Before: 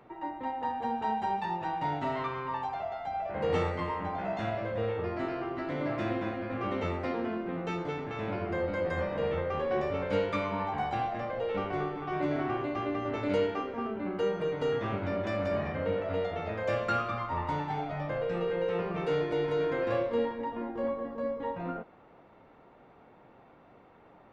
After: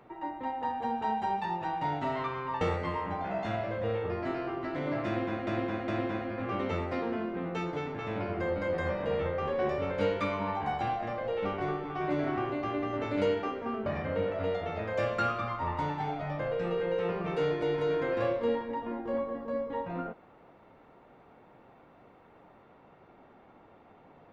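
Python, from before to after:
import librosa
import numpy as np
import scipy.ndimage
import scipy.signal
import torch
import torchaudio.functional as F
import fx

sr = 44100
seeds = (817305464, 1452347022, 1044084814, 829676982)

y = fx.edit(x, sr, fx.cut(start_s=2.61, length_s=0.94),
    fx.repeat(start_s=6.0, length_s=0.41, count=3),
    fx.cut(start_s=13.98, length_s=1.58), tone=tone)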